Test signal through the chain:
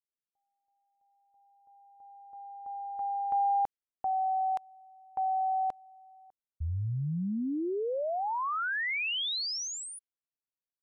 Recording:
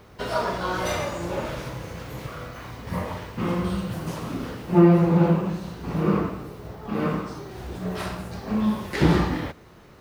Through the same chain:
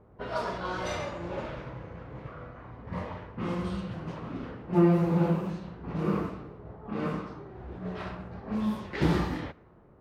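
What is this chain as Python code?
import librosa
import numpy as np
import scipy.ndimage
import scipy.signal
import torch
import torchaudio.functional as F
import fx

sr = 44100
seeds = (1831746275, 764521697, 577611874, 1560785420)

y = fx.env_lowpass(x, sr, base_hz=830.0, full_db=-19.0)
y = y * 10.0 ** (-6.5 / 20.0)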